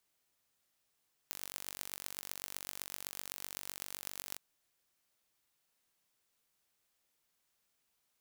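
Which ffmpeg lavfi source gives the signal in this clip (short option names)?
-f lavfi -i "aevalsrc='0.266*eq(mod(n,923),0)*(0.5+0.5*eq(mod(n,5538),0))':d=3.07:s=44100"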